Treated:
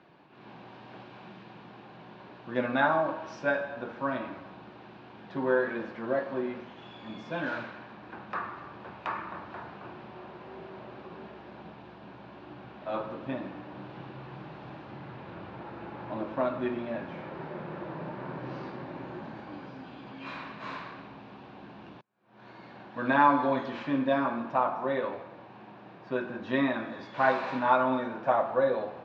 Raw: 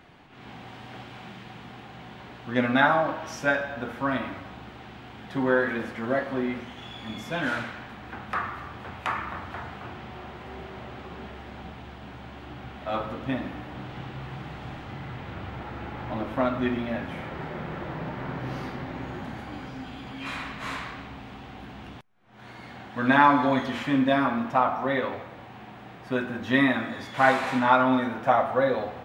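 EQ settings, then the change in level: speaker cabinet 220–4900 Hz, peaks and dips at 250 Hz -8 dB, 450 Hz -5 dB, 750 Hz -7 dB, 1300 Hz -6 dB, 2000 Hz -9 dB, 3200 Hz -6 dB; high shelf 2200 Hz -9 dB; +2.0 dB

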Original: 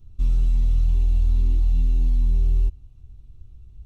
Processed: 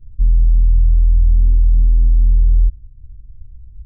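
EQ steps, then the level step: Gaussian blur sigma 18 samples; low shelf 99 Hz +9 dB; 0.0 dB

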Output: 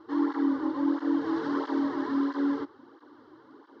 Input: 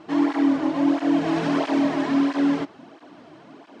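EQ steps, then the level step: LPF 4600 Hz 24 dB/oct; fixed phaser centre 670 Hz, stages 6; -4.0 dB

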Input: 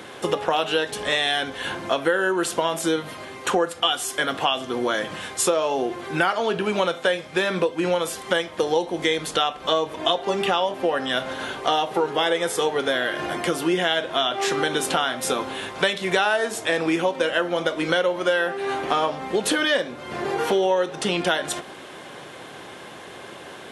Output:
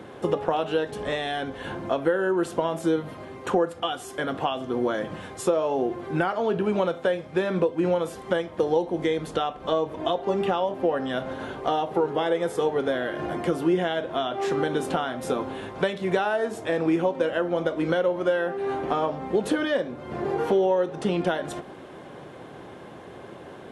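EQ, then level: tilt shelf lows +7.5 dB, about 1400 Hz; low shelf 150 Hz +4 dB; -7.0 dB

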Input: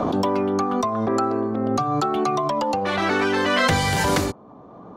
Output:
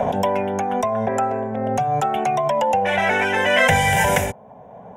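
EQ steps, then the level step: low shelf 150 Hz -6.5 dB; fixed phaser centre 1200 Hz, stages 6; +7.0 dB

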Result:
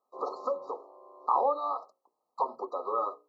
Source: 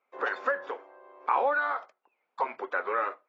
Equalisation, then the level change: brick-wall FIR band-stop 1300–3800 Hz; notches 60/120/180/240/300/360/420/480/540 Hz; 0.0 dB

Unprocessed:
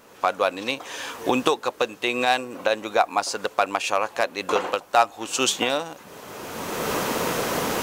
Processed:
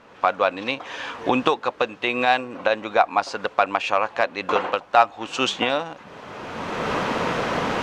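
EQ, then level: LPF 3200 Hz 12 dB/oct; bell 390 Hz -4 dB 0.86 oct; +3.0 dB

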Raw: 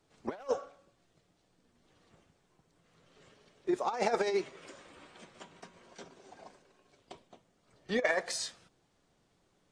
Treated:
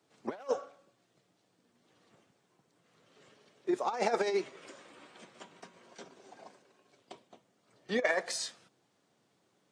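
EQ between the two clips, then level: HPF 120 Hz 24 dB/oct; bell 160 Hz -5.5 dB 0.25 oct; 0.0 dB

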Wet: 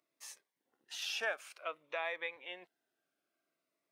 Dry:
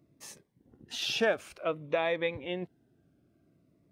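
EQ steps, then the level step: HPF 1000 Hz 12 dB/oct; dynamic EQ 3800 Hz, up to -6 dB, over -46 dBFS, Q 1.5; -2.5 dB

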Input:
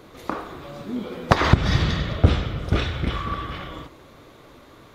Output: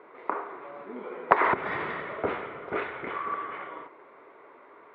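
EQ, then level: speaker cabinet 390–2300 Hz, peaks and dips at 410 Hz +9 dB, 670 Hz +3 dB, 970 Hz +9 dB, 1400 Hz +4 dB, 2100 Hz +7 dB; -6.5 dB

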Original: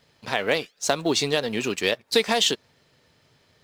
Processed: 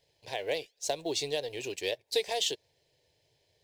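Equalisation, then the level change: fixed phaser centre 530 Hz, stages 4; -7.5 dB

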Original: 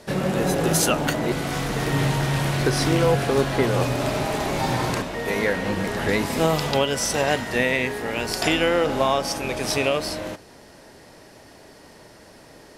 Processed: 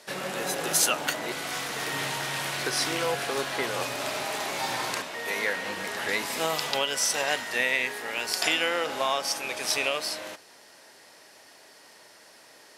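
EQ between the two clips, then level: HPF 1400 Hz 6 dB/oct; 0.0 dB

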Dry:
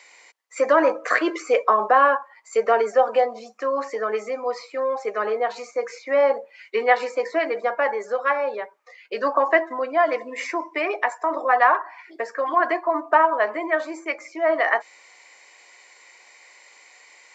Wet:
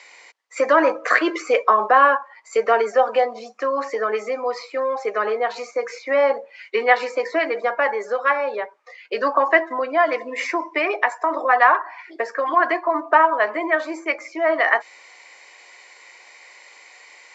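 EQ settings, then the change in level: HPF 220 Hz; LPF 6500 Hz 12 dB/oct; dynamic EQ 580 Hz, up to -4 dB, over -26 dBFS, Q 0.79; +4.5 dB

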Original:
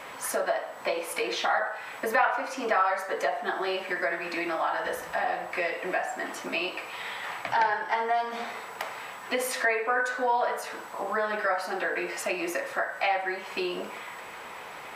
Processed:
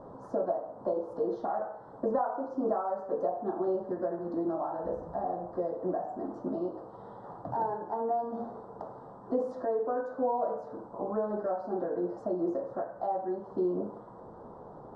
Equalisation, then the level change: Butterworth band-stop 2400 Hz, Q 0.58; tape spacing loss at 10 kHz 37 dB; tilt shelf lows +8.5 dB, about 640 Hz; 0.0 dB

